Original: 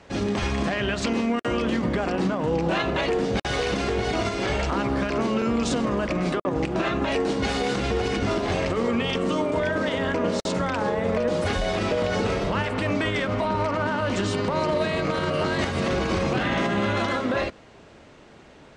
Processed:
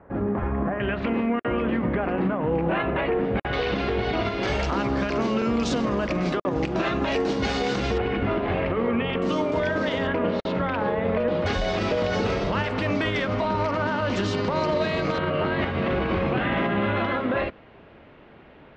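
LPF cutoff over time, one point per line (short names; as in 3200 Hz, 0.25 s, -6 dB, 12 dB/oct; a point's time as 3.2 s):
LPF 24 dB/oct
1500 Hz
from 0.8 s 2500 Hz
from 3.53 s 4000 Hz
from 4.43 s 6400 Hz
from 7.98 s 2800 Hz
from 9.22 s 6000 Hz
from 10.07 s 3400 Hz
from 11.46 s 6000 Hz
from 15.18 s 3100 Hz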